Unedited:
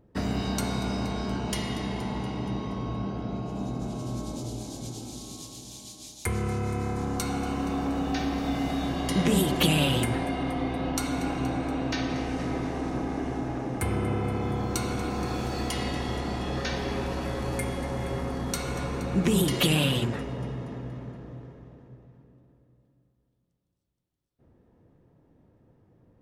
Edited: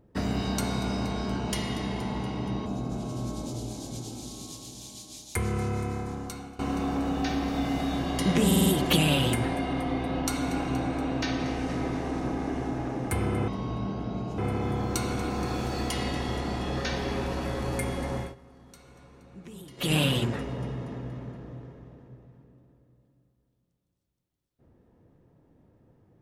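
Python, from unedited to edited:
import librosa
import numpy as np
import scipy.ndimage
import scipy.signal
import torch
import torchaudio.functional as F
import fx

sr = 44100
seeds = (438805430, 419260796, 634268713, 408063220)

y = fx.edit(x, sr, fx.move(start_s=2.66, length_s=0.9, to_s=14.18),
    fx.fade_out_to(start_s=6.61, length_s=0.88, floor_db=-19.0),
    fx.stutter(start_s=9.36, slice_s=0.05, count=5),
    fx.fade_down_up(start_s=17.97, length_s=1.78, db=-21.5, fade_s=0.18), tone=tone)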